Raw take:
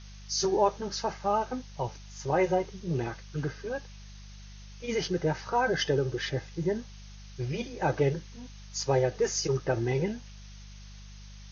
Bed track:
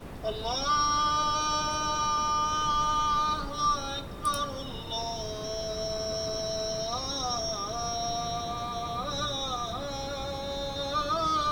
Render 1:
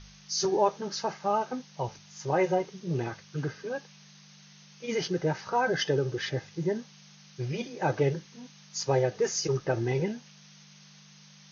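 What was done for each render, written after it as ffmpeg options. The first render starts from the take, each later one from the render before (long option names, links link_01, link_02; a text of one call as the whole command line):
ffmpeg -i in.wav -af "bandreject=frequency=50:width_type=h:width=4,bandreject=frequency=100:width_type=h:width=4" out.wav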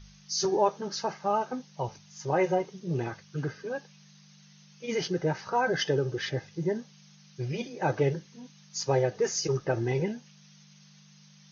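ffmpeg -i in.wav -af "afftdn=noise_reduction=6:noise_floor=-54" out.wav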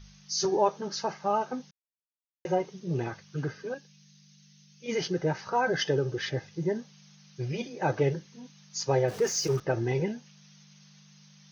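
ffmpeg -i in.wav -filter_complex "[0:a]asettb=1/sr,asplit=3[link_01][link_02][link_03];[link_01]atrim=end=3.744[link_04];[link_02]atrim=start=3.74:end=4.86,asetpts=PTS-STARTPTS,afade=type=in:duration=0.004:curve=qsin,afade=type=out:start_time=1.116:duration=0.004:curve=qsin,equalizer=frequency=860:width_type=o:width=2.3:gain=-14.5[link_05];[link_03]atrim=start=4.856[link_06];[link_04][link_05]acrossfade=duration=0.004:curve1=hsin:curve2=qsin[link_07];[link_07][link_06]acrossfade=duration=0.004:curve1=qsin:curve2=hsin,asettb=1/sr,asplit=3[link_08][link_09][link_10];[link_08]atrim=end=9.084[link_11];[link_09]atrim=start=9.08:end=9.6,asetpts=PTS-STARTPTS,afade=type=in:duration=0.004:curve=qsin,afade=type=out:start_time=0.516:duration=0.004:curve=qsin,aeval=exprs='val(0)+0.5*0.0119*sgn(val(0))':channel_layout=same[link_12];[link_10]atrim=start=9.596[link_13];[link_11][link_12]acrossfade=duration=0.004:curve1=hsin:curve2=qsin[link_14];[link_14][link_13]acrossfade=duration=0.004:curve1=qsin:curve2=hsin,asplit=3[link_15][link_16][link_17];[link_15]atrim=end=1.71,asetpts=PTS-STARTPTS,afade=type=out:start_time=1.706:duration=0.004:curve=hsin[link_18];[link_16]atrim=start=1.71:end=2.45,asetpts=PTS-STARTPTS,volume=0[link_19];[link_17]atrim=start=2.45,asetpts=PTS-STARTPTS,afade=type=in:duration=0.004:curve=hsin[link_20];[link_18][link_19][link_20]concat=n=3:v=0:a=1" out.wav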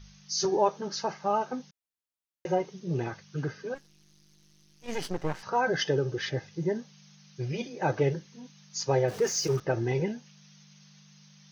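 ffmpeg -i in.wav -filter_complex "[0:a]asettb=1/sr,asplit=3[link_01][link_02][link_03];[link_01]atrim=end=3.754[link_04];[link_02]atrim=start=3.75:end=5.43,asetpts=PTS-STARTPTS,afade=type=in:duration=0.004:curve=qsin,afade=type=out:start_time=1.676:duration=0.004:curve=qsin,aeval=exprs='max(val(0),0)':channel_layout=same[link_05];[link_03]atrim=start=5.426[link_06];[link_04][link_05]acrossfade=duration=0.004:curve1=hsin:curve2=qsin[link_07];[link_07][link_06]acrossfade=duration=0.004:curve1=qsin:curve2=hsin" out.wav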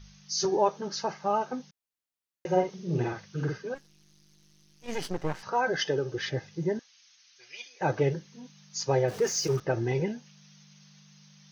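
ffmpeg -i in.wav -filter_complex "[0:a]asettb=1/sr,asplit=3[link_01][link_02][link_03];[link_01]atrim=end=2.474[link_04];[link_02]atrim=start=2.47:end=3.59,asetpts=PTS-STARTPTS,afade=type=in:duration=0.004:curve=qsin,afade=type=out:start_time=1.116:duration=0.004:curve=qsin,asplit=2[link_05][link_06];[link_06]adelay=49,volume=-3dB[link_07];[link_05][link_07]amix=inputs=2:normalize=0,atrim=end_sample=49392[link_08];[link_03]atrim=start=3.586[link_09];[link_04][link_08]acrossfade=duration=0.004:curve1=hsin:curve2=qsin[link_10];[link_10][link_09]acrossfade=duration=0.004:curve1=qsin:curve2=hsin,asettb=1/sr,asplit=3[link_11][link_12][link_13];[link_11]atrim=end=5.514[link_14];[link_12]atrim=start=5.51:end=6.15,asetpts=PTS-STARTPTS,afade=type=in:duration=0.004:curve=qsin,afade=type=out:start_time=0.636:duration=0.004:curve=qsin,lowshelf=frequency=140:gain=-11[link_15];[link_13]atrim=start=6.146[link_16];[link_14][link_15]acrossfade=duration=0.004:curve1=hsin:curve2=qsin[link_17];[link_17][link_16]acrossfade=duration=0.004:curve1=qsin:curve2=hsin,asettb=1/sr,asplit=3[link_18][link_19][link_20];[link_18]atrim=end=6.794[link_21];[link_19]atrim=start=6.79:end=7.81,asetpts=PTS-STARTPTS,afade=type=in:duration=0.004:curve=qsin,afade=type=out:start_time=1.016:duration=0.004:curve=qsin,asuperpass=centerf=3700:order=4:qfactor=0.52[link_22];[link_20]atrim=start=7.806[link_23];[link_21][link_22]acrossfade=duration=0.004:curve1=hsin:curve2=qsin[link_24];[link_24][link_23]acrossfade=duration=0.004:curve1=qsin:curve2=hsin" out.wav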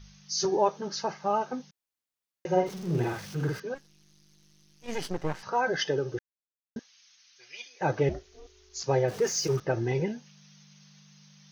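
ffmpeg -i in.wav -filter_complex "[0:a]asettb=1/sr,asplit=3[link_01][link_02][link_03];[link_01]atrim=end=2.664[link_04];[link_02]atrim=start=2.66:end=3.6,asetpts=PTS-STARTPTS,afade=type=in:duration=0.004:curve=qsin,afade=type=out:start_time=0.936:duration=0.004:curve=qsin,aeval=exprs='val(0)+0.5*0.01*sgn(val(0))':channel_layout=same[link_05];[link_03]atrim=start=3.596[link_06];[link_04][link_05]acrossfade=duration=0.004:curve1=hsin:curve2=qsin[link_07];[link_07][link_06]acrossfade=duration=0.004:curve1=qsin:curve2=hsin,asettb=1/sr,asplit=3[link_08][link_09][link_10];[link_08]atrim=end=8.094[link_11];[link_09]atrim=start=8.09:end=8.84,asetpts=PTS-STARTPTS,afade=type=in:duration=0.004:curve=qsin,afade=type=out:start_time=0.746:duration=0.004:curve=qsin,aeval=exprs='val(0)*sin(2*PI*220*n/s)':channel_layout=same[link_12];[link_10]atrim=start=8.836[link_13];[link_11][link_12]acrossfade=duration=0.004:curve1=hsin:curve2=qsin[link_14];[link_14][link_13]acrossfade=duration=0.004:curve1=qsin:curve2=hsin,asplit=3[link_15][link_16][link_17];[link_15]atrim=end=6.19,asetpts=PTS-STARTPTS,afade=type=out:start_time=6.186:duration=0.004:curve=hsin[link_18];[link_16]atrim=start=6.19:end=6.76,asetpts=PTS-STARTPTS,volume=0[link_19];[link_17]atrim=start=6.76,asetpts=PTS-STARTPTS,afade=type=in:duration=0.004:curve=hsin[link_20];[link_18][link_19][link_20]concat=n=3:v=0:a=1" out.wav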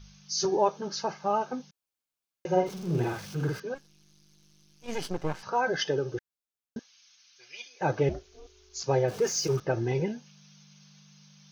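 ffmpeg -i in.wav -af "bandreject=frequency=1900:width=9.1" out.wav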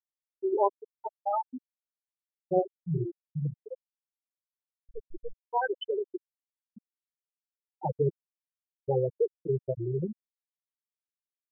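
ffmpeg -i in.wav -af "afftfilt=real='re*gte(hypot(re,im),0.282)':imag='im*gte(hypot(re,im),0.282)':win_size=1024:overlap=0.75" out.wav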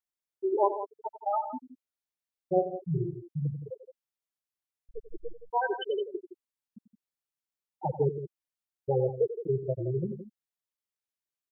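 ffmpeg -i in.wav -af "aecho=1:1:91|168:0.237|0.251" out.wav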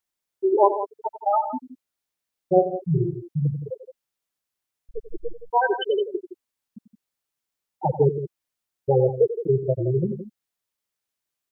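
ffmpeg -i in.wav -af "volume=8dB" out.wav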